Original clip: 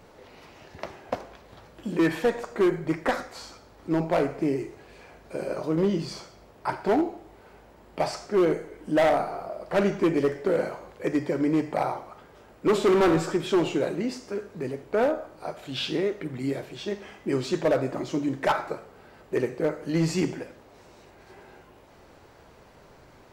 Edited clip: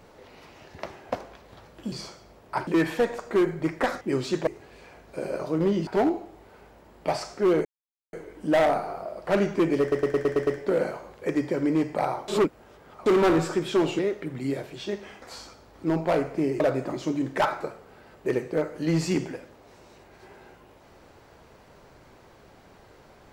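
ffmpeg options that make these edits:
-filter_complex "[0:a]asplit=18[s0][s1][s2][s3][s4][s5][s6][s7][s8][s9][s10][s11][s12][s13][s14][s15][s16][s17];[s0]atrim=end=1.922[s18];[s1]atrim=start=6.038:end=6.792[s19];[s2]atrim=start=1.918:end=3.262[s20];[s3]atrim=start=17.208:end=17.672[s21];[s4]atrim=start=4.638:end=6.042[s22];[s5]atrim=start=6.788:end=8.57,asetpts=PTS-STARTPTS,afade=t=out:st=1.778:d=0.004:c=hsin,apad=pad_dur=0.48[s23];[s6]atrim=start=8.57:end=10.362,asetpts=PTS-STARTPTS,afade=t=in:d=0.004:c=hsin[s24];[s7]atrim=start=10.248:end=10.362[s25];[s8]atrim=start=10.248:end=10.362[s26];[s9]atrim=start=10.248:end=10.362[s27];[s10]atrim=start=10.248:end=10.362[s28];[s11]atrim=start=10.248:end=10.362[s29];[s12]atrim=start=10.248:end=12.062[s30];[s13]atrim=start=12.058:end=12.842,asetpts=PTS-STARTPTS,areverse[s31];[s14]atrim=start=12.838:end=13.772[s32];[s15]atrim=start=15.978:end=17.212[s33];[s16]atrim=start=3.258:end=4.642[s34];[s17]atrim=start=17.668[s35];[s18][s19]acrossfade=d=0.004:c1=hsin:c2=hsin[s36];[s36][s20]acrossfade=d=0.004:c1=hsin:c2=hsin[s37];[s37][s21]acrossfade=d=0.004:c1=hsin:c2=hsin[s38];[s38][s22]acrossfade=d=0.004:c1=hsin:c2=hsin[s39];[s23][s24]concat=n=2:v=0:a=1[s40];[s39][s40]acrossfade=d=0.004:c1=hsin:c2=hsin[s41];[s41][s25]acrossfade=d=0.004:c1=hsin:c2=hsin[s42];[s42][s26]acrossfade=d=0.004:c1=hsin:c2=hsin[s43];[s43][s27]acrossfade=d=0.004:c1=hsin:c2=hsin[s44];[s44][s28]acrossfade=d=0.004:c1=hsin:c2=hsin[s45];[s45][s29]acrossfade=d=0.004:c1=hsin:c2=hsin[s46];[s46][s30]acrossfade=d=0.004:c1=hsin:c2=hsin[s47];[s47][s31]acrossfade=d=0.004:c1=hsin:c2=hsin[s48];[s48][s32]acrossfade=d=0.004:c1=hsin:c2=hsin[s49];[s49][s33]acrossfade=d=0.004:c1=hsin:c2=hsin[s50];[s50][s34]acrossfade=d=0.004:c1=hsin:c2=hsin[s51];[s51][s35]acrossfade=d=0.004:c1=hsin:c2=hsin"

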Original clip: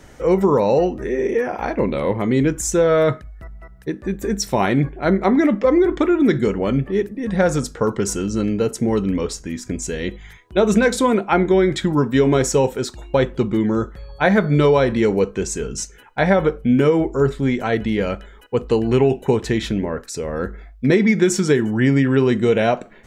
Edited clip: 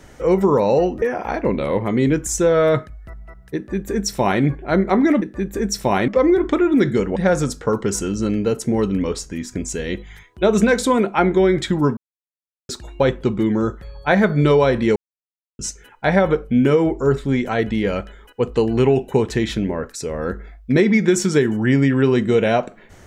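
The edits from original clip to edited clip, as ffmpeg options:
-filter_complex "[0:a]asplit=9[s0][s1][s2][s3][s4][s5][s6][s7][s8];[s0]atrim=end=1.022[s9];[s1]atrim=start=1.358:end=5.562[s10];[s2]atrim=start=3.898:end=4.762[s11];[s3]atrim=start=5.558:end=6.642[s12];[s4]atrim=start=7.298:end=12.11,asetpts=PTS-STARTPTS,afade=t=out:st=4.808:d=0.004:c=hsin[s13];[s5]atrim=start=12.11:end=12.83,asetpts=PTS-STARTPTS,volume=0[s14];[s6]atrim=start=12.83:end=15.1,asetpts=PTS-STARTPTS,afade=t=in:d=0.004:c=hsin,afade=t=out:st=2.266:d=0.004:c=hsin[s15];[s7]atrim=start=15.1:end=15.73,asetpts=PTS-STARTPTS,volume=0[s16];[s8]atrim=start=15.73,asetpts=PTS-STARTPTS,afade=t=in:d=0.004:c=hsin[s17];[s9][s10]acrossfade=d=0.004:c1=hsin:c2=hsin[s18];[s18][s11]acrossfade=d=0.004:c1=hsin:c2=hsin[s19];[s19][s12]acrossfade=d=0.004:c1=hsin:c2=hsin[s20];[s13][s14][s15][s16][s17]concat=n=5:v=0:a=1[s21];[s20][s21]acrossfade=d=0.004:c1=hsin:c2=hsin"

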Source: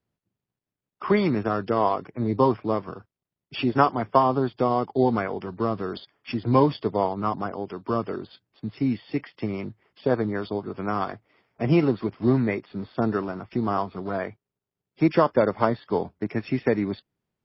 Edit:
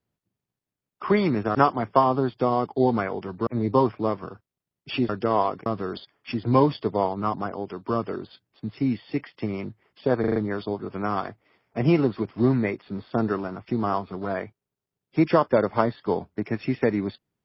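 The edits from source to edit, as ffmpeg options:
-filter_complex "[0:a]asplit=9[s0][s1][s2][s3][s4][s5][s6][s7][s8];[s0]atrim=end=1.552[s9];[s1]atrim=start=3.738:end=5.662[s10];[s2]atrim=start=2.118:end=3.742[s11];[s3]atrim=start=1.548:end=2.122[s12];[s4]atrim=start=5.658:end=10.242[s13];[s5]atrim=start=10.198:end=10.242[s14];[s6]atrim=start=10.198:end=10.242[s15];[s7]atrim=start=10.198:end=10.242[s16];[s8]atrim=start=10.198[s17];[s9][s10]acrossfade=d=0.004:c1=hsin:c2=hsin[s18];[s18][s11]acrossfade=d=0.004:c1=hsin:c2=hsin[s19];[s19][s12]acrossfade=d=0.004:c1=hsin:c2=hsin[s20];[s20][s13]acrossfade=d=0.004:c1=hsin:c2=hsin[s21];[s21][s14]acrossfade=d=0.004:c1=hsin:c2=hsin[s22];[s22][s15]acrossfade=d=0.004:c1=hsin:c2=hsin[s23];[s23][s16]acrossfade=d=0.004:c1=hsin:c2=hsin[s24];[s24][s17]acrossfade=d=0.004:c1=hsin:c2=hsin"

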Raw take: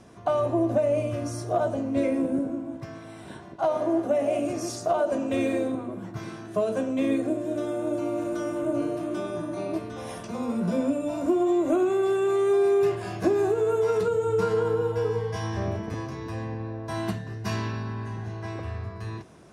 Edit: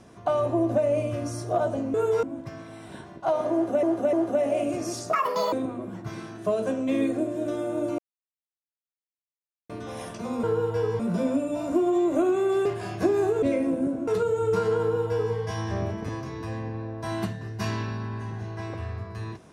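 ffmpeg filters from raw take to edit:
-filter_complex "[0:a]asplit=14[s0][s1][s2][s3][s4][s5][s6][s7][s8][s9][s10][s11][s12][s13];[s0]atrim=end=1.942[s14];[s1]atrim=start=13.638:end=13.932[s15];[s2]atrim=start=2.588:end=4.192[s16];[s3]atrim=start=3.888:end=4.192[s17];[s4]atrim=start=3.888:end=4.894[s18];[s5]atrim=start=4.89:end=5.62,asetpts=PTS-STARTPTS,asetrate=81585,aresample=44100[s19];[s6]atrim=start=5.616:end=8.08,asetpts=PTS-STARTPTS,afade=t=out:st=2.46:d=0.004:c=hsin[s20];[s7]atrim=start=8.08:end=9.79,asetpts=PTS-STARTPTS,volume=0[s21];[s8]atrim=start=9.79:end=10.532,asetpts=PTS-STARTPTS,afade=t=in:d=0.004:c=hsin[s22];[s9]atrim=start=14.648:end=15.212[s23];[s10]atrim=start=10.528:end=12.192[s24];[s11]atrim=start=12.868:end=13.642[s25];[s12]atrim=start=1.938:end=2.592[s26];[s13]atrim=start=13.928[s27];[s14][s15]acrossfade=d=0.004:c1=hsin:c2=hsin[s28];[s28][s16]acrossfade=d=0.004:c1=hsin:c2=hsin[s29];[s29][s17]acrossfade=d=0.004:c1=hsin:c2=hsin[s30];[s30][s18]acrossfade=d=0.004:c1=hsin:c2=hsin[s31];[s31][s19]acrossfade=d=0.004:c1=hsin:c2=hsin[s32];[s20][s21][s22]concat=n=3:v=0:a=1[s33];[s32][s33]acrossfade=d=0.004:c1=hsin:c2=hsin[s34];[s34][s23]acrossfade=d=0.004:c1=hsin:c2=hsin[s35];[s35][s24]acrossfade=d=0.004:c1=hsin:c2=hsin[s36];[s36][s25]acrossfade=d=0.004:c1=hsin:c2=hsin[s37];[s37][s26]acrossfade=d=0.004:c1=hsin:c2=hsin[s38];[s38][s27]acrossfade=d=0.004:c1=hsin:c2=hsin"

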